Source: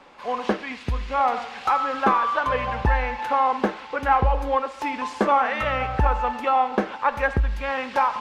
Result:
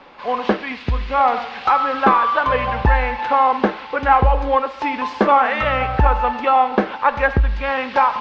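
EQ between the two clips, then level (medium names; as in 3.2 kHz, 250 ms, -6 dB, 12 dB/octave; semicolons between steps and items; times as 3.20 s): low-pass 5 kHz 24 dB/octave; +5.5 dB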